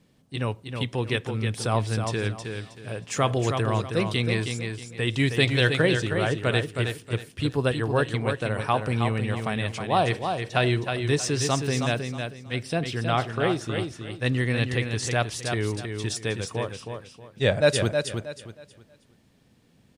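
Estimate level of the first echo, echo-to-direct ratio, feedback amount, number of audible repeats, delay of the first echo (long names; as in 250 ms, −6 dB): −6.0 dB, −5.5 dB, 28%, 3, 317 ms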